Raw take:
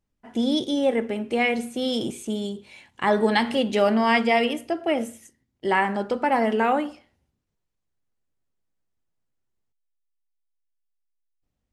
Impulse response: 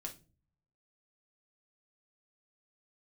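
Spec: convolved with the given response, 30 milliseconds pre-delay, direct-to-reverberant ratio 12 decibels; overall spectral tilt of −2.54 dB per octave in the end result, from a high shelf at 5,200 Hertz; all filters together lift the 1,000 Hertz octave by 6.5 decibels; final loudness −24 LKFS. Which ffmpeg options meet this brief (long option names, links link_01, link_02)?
-filter_complex "[0:a]equalizer=frequency=1000:width_type=o:gain=8.5,highshelf=frequency=5200:gain=-4,asplit=2[link_01][link_02];[1:a]atrim=start_sample=2205,adelay=30[link_03];[link_02][link_03]afir=irnorm=-1:irlink=0,volume=-9dB[link_04];[link_01][link_04]amix=inputs=2:normalize=0,volume=-4dB"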